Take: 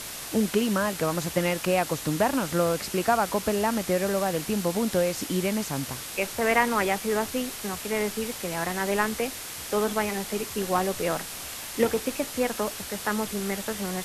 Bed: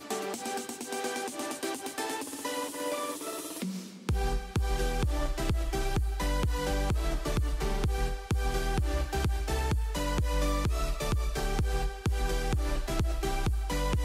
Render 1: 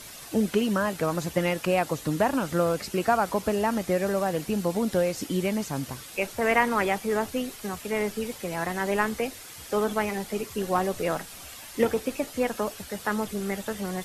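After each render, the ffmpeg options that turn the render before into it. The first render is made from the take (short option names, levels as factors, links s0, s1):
-af "afftdn=nr=9:nf=-38"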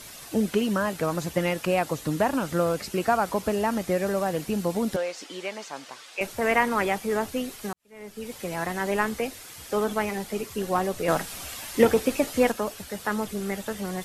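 -filter_complex "[0:a]asettb=1/sr,asplit=3[s0][s1][s2];[s0]atrim=end=4.964[s3];[s1]atrim=start=4.96:end=6.21,asetpts=PTS-STARTPTS,afade=t=in:d=0.004:c=qsin,afade=t=out:st=1.246:d=0.004:c=qsin,highpass=580,lowpass=5900[s4];[s2]atrim=start=6.206[s5];[s3][s4]acrossfade=d=0.004:c1=hsin:c2=qsin[s6];[s6][s5]acrossfade=d=0.004:c1=qsin:c2=hsin,asettb=1/sr,asplit=3[s7][s8][s9];[s7]atrim=end=11.084[s10];[s8]atrim=start=11.08:end=12.52,asetpts=PTS-STARTPTS,afade=t=in:d=0.004:c=qsin,afade=t=out:st=1.436:d=0.004:c=qsin,acontrast=34[s11];[s9]atrim=start=12.516[s12];[s10][s11]acrossfade=d=0.004:c1=hsin:c2=qsin[s13];[s13][s12]acrossfade=d=0.004:c1=qsin:c2=hsin,asplit=2[s14][s15];[s14]atrim=end=7.73,asetpts=PTS-STARTPTS,afade=t=out:st=7.726:d=0.004:c=hsin[s16];[s15]atrim=start=7.73,asetpts=PTS-STARTPTS,afade=t=in:d=0.67:c=qua[s17];[s16][s17]concat=n=2:v=0:a=1"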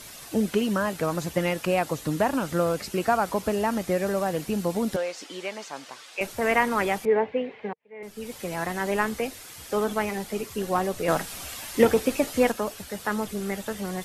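-filter_complex "[0:a]asettb=1/sr,asplit=3[s0][s1][s2];[s0]atrim=end=7.054[s3];[s1]atrim=start=7.05:end=8.03,asetpts=PTS-STARTPTS,afade=t=in:d=0.004:c=qsin,afade=t=out:st=0.976:d=0.004:c=qsin,highpass=170,equalizer=f=320:t=q:w=4:g=-9,equalizer=f=460:t=q:w=4:g=10,equalizer=f=880:t=q:w=4:g=4,equalizer=f=1300:t=q:w=4:g=-10,equalizer=f=2100:t=q:w=4:g=6,lowpass=f=2600:w=0.5412,lowpass=f=2600:w=1.3066[s4];[s2]atrim=start=8.026[s5];[s3][s4]acrossfade=d=0.004:c1=hsin:c2=qsin[s6];[s6][s5]acrossfade=d=0.004:c1=qsin:c2=hsin"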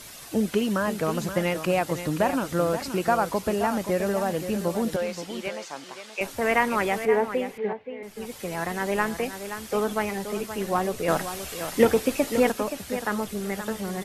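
-af "aecho=1:1:525:0.316"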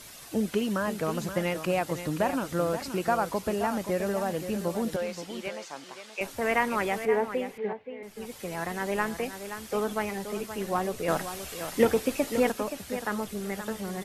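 -af "volume=0.668"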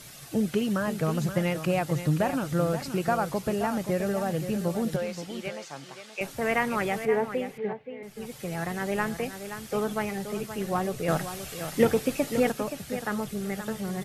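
-af "equalizer=f=140:t=o:w=0.45:g=14.5,bandreject=f=990:w=11"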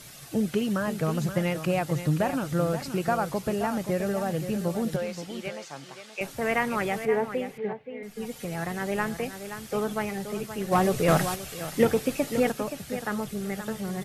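-filter_complex "[0:a]asettb=1/sr,asplit=3[s0][s1][s2];[s0]atrim=end=7.944[s3];[s1]atrim=start=7.94:end=8.45,asetpts=PTS-STARTPTS,afade=t=in:d=0.004:c=qsin,afade=t=out:st=0.506:d=0.004:c=qsin,aecho=1:1:4.2:0.65,atrim=end_sample=22491[s4];[s2]atrim=start=8.446[s5];[s3][s4]acrossfade=d=0.004:c1=hsin:c2=qsin[s6];[s6][s5]acrossfade=d=0.004:c1=qsin:c2=hsin,asplit=3[s7][s8][s9];[s7]afade=t=out:st=10.71:d=0.02[s10];[s8]aeval=exprs='0.224*sin(PI/2*1.41*val(0)/0.224)':c=same,afade=t=in:st=10.71:d=0.02,afade=t=out:st=11.34:d=0.02[s11];[s9]afade=t=in:st=11.34:d=0.02[s12];[s10][s11][s12]amix=inputs=3:normalize=0"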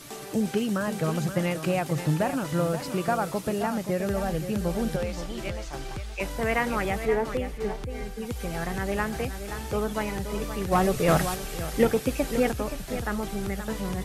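-filter_complex "[1:a]volume=0.473[s0];[0:a][s0]amix=inputs=2:normalize=0"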